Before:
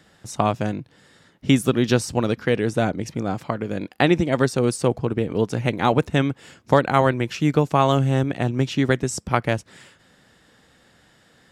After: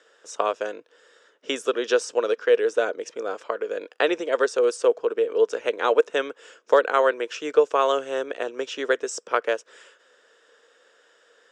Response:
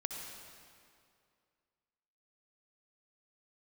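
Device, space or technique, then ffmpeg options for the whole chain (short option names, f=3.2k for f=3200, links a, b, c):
phone speaker on a table: -af "highpass=f=450:w=0.5412,highpass=f=450:w=1.3066,equalizer=f=460:t=q:w=4:g=9,equalizer=f=790:t=q:w=4:g=-10,equalizer=f=1.5k:t=q:w=4:g=3,equalizer=f=2.1k:t=q:w=4:g=-7,equalizer=f=4.3k:t=q:w=4:g=-9,lowpass=f=7.4k:w=0.5412,lowpass=f=7.4k:w=1.3066"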